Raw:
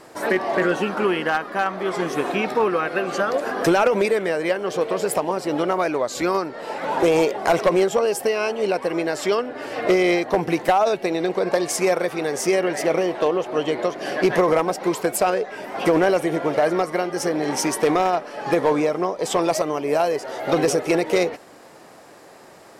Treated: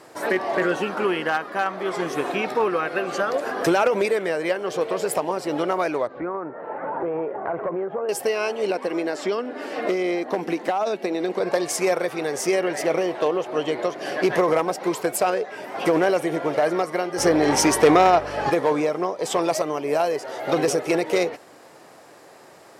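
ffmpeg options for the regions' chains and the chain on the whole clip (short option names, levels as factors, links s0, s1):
-filter_complex "[0:a]asettb=1/sr,asplit=3[s0][s1][s2];[s0]atrim=end=6.074[s3];[s1]atrim=start=6.07:end=8.09,asetpts=PTS-STARTPTS,afade=t=in:d=0.004:c=qsin,afade=t=out:st=2.016:d=0.004:c=qsin,lowpass=f=1600:w=0.5412,lowpass=f=1600:w=1.3066,acompressor=threshold=0.0708:ratio=3:attack=3.2:release=140:knee=1:detection=peak[s4];[s2]atrim=start=8.086[s5];[s3][s4]acrossfade=d=0.004:c1=hsin:c2=qsin[s6];[s6][s5]acrossfade=d=0.004:c1=qsin:c2=hsin,asettb=1/sr,asplit=3[s7][s8][s9];[s7]atrim=end=8.704[s10];[s8]atrim=start=8.7:end=11.4,asetpts=PTS-STARTPTS,afade=t=in:d=0.004:c=qsin,afade=t=out:st=2.696:d=0.004:c=qsin,lowshelf=f=160:t=q:w=3:g=-9.5,acrossover=split=1700|7900[s11][s12][s13];[s11]acompressor=threshold=0.112:ratio=4[s14];[s12]acompressor=threshold=0.0178:ratio=4[s15];[s13]acompressor=threshold=0.00126:ratio=4[s16];[s14][s15][s16]amix=inputs=3:normalize=0[s17];[s9]atrim=start=11.396[s18];[s10][s17]acrossfade=d=0.004:c1=hsin:c2=qsin[s19];[s19][s18]acrossfade=d=0.004:c1=qsin:c2=hsin,asettb=1/sr,asplit=3[s20][s21][s22];[s20]atrim=end=17.184[s23];[s21]atrim=start=17.18:end=18.5,asetpts=PTS-STARTPTS,afade=t=in:d=0.004:c=qsin,afade=t=out:st=1.316:d=0.004:c=qsin,highshelf=f=8600:g=-4.5,acontrast=83,aeval=exprs='val(0)+0.0224*(sin(2*PI*50*n/s)+sin(2*PI*2*50*n/s)/2+sin(2*PI*3*50*n/s)/3+sin(2*PI*4*50*n/s)/4+sin(2*PI*5*50*n/s)/5)':c=same[s24];[s22]atrim=start=18.496[s25];[s23][s24]acrossfade=d=0.004:c1=hsin:c2=qsin[s26];[s26][s25]acrossfade=d=0.004:c1=qsin:c2=hsin,highpass=83,equalizer=f=210:w=2.2:g=-3.5,volume=0.841"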